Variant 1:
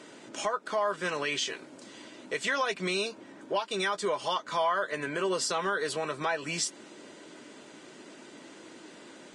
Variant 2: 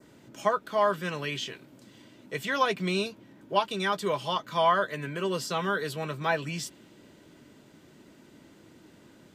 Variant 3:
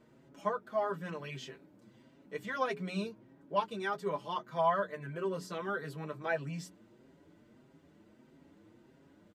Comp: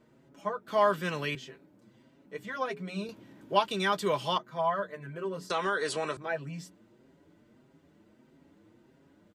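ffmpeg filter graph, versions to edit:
-filter_complex "[1:a]asplit=2[a][b];[2:a]asplit=4[c][d][e][f];[c]atrim=end=0.682[g];[a]atrim=start=0.678:end=1.352[h];[d]atrim=start=1.348:end=3.092[i];[b]atrim=start=3.088:end=4.382[j];[e]atrim=start=4.378:end=5.502[k];[0:a]atrim=start=5.498:end=6.172[l];[f]atrim=start=6.168[m];[g][h]acrossfade=d=0.004:c1=hsin:c2=hsin[n];[n][i]acrossfade=d=0.004:c1=hsin:c2=hsin[o];[o][j]acrossfade=d=0.004:c1=hsin:c2=hsin[p];[p][k]acrossfade=d=0.004:c1=hsin:c2=hsin[q];[q][l]acrossfade=d=0.004:c1=hsin:c2=hsin[r];[r][m]acrossfade=d=0.004:c1=hsin:c2=hsin"

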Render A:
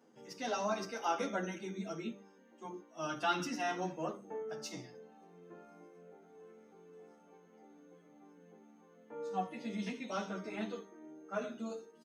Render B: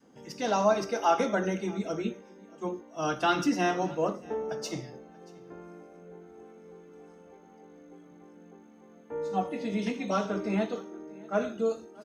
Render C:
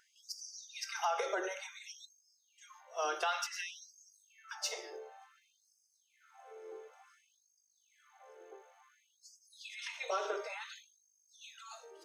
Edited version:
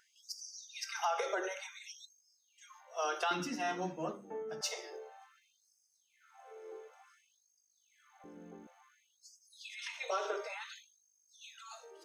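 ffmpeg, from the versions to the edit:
-filter_complex "[2:a]asplit=3[a][b][c];[a]atrim=end=3.312[d];[0:a]atrim=start=3.308:end=4.612[e];[b]atrim=start=4.608:end=8.242[f];[1:a]atrim=start=8.238:end=8.672[g];[c]atrim=start=8.668[h];[d][e]acrossfade=d=0.004:c1=hsin:c2=hsin[i];[i][f]acrossfade=d=0.004:c1=hsin:c2=hsin[j];[j][g]acrossfade=d=0.004:c1=hsin:c2=hsin[k];[k][h]acrossfade=d=0.004:c1=hsin:c2=hsin"

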